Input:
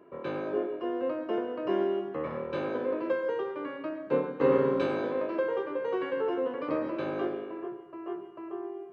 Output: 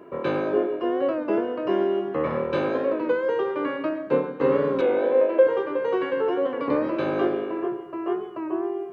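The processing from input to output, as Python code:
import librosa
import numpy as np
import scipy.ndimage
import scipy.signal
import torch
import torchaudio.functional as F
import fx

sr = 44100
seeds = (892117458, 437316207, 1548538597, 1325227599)

y = fx.rider(x, sr, range_db=4, speed_s=0.5)
y = fx.cabinet(y, sr, low_hz=290.0, low_slope=12, high_hz=3500.0, hz=(520.0, 780.0, 1200.0), db=(8, 3, -6), at=(4.82, 5.47))
y = fx.record_warp(y, sr, rpm=33.33, depth_cents=100.0)
y = y * librosa.db_to_amplitude(6.5)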